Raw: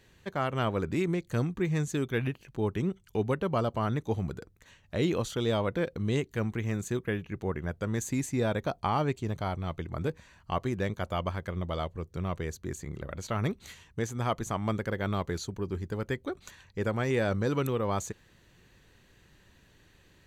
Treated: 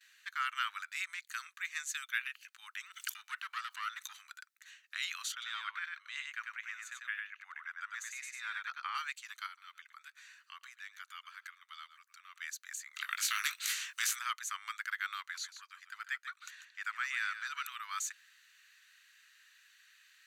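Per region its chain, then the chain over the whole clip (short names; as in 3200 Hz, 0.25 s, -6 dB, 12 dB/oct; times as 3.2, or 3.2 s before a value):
2.9–4.25 HPF 110 Hz 24 dB/oct + tube stage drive 22 dB, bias 0.7 + fast leveller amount 70%
5.32–8.95 LPF 1900 Hz 6 dB/oct + echo 97 ms -3.5 dB
9.46–12.41 echo 0.111 s -19.5 dB + compressor 2.5:1, threshold -40 dBFS
12.96–14.19 doubler 20 ms -7.5 dB + spectral compressor 2:1
15.2–17.72 high shelf 4700 Hz -6.5 dB + echo 0.144 s -11 dB
whole clip: gate with hold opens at -53 dBFS; steep high-pass 1300 Hz 48 dB/oct; notch 3300 Hz, Q 23; gain +2.5 dB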